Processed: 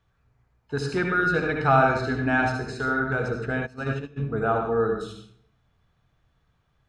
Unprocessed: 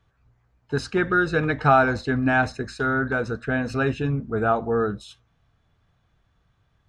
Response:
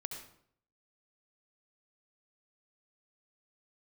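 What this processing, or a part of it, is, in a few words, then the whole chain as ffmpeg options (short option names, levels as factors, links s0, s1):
bathroom: -filter_complex "[0:a]bandreject=f=50:t=h:w=6,bandreject=f=100:t=h:w=6,bandreject=f=150:t=h:w=6,bandreject=f=200:t=h:w=6,bandreject=f=250:t=h:w=6,bandreject=f=300:t=h:w=6,bandreject=f=350:t=h:w=6,bandreject=f=400:t=h:w=6[s0];[1:a]atrim=start_sample=2205[s1];[s0][s1]afir=irnorm=-1:irlink=0,asplit=3[s2][s3][s4];[s2]afade=t=out:st=3.65:d=0.02[s5];[s3]agate=range=0.112:threshold=0.0708:ratio=16:detection=peak,afade=t=in:st=3.65:d=0.02,afade=t=out:st=4.16:d=0.02[s6];[s4]afade=t=in:st=4.16:d=0.02[s7];[s5][s6][s7]amix=inputs=3:normalize=0"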